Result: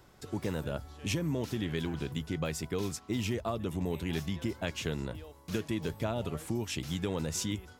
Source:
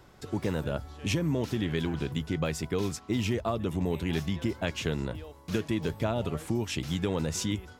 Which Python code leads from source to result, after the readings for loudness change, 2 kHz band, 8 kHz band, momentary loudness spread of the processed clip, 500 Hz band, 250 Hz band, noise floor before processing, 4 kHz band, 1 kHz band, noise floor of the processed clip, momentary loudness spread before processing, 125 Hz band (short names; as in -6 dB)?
-3.5 dB, -3.5 dB, -1.0 dB, 4 LU, -4.0 dB, -4.0 dB, -53 dBFS, -2.5 dB, -4.0 dB, -57 dBFS, 4 LU, -4.0 dB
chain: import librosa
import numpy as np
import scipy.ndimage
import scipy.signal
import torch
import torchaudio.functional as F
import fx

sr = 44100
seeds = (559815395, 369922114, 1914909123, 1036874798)

y = fx.high_shelf(x, sr, hz=6600.0, db=6.0)
y = F.gain(torch.from_numpy(y), -4.0).numpy()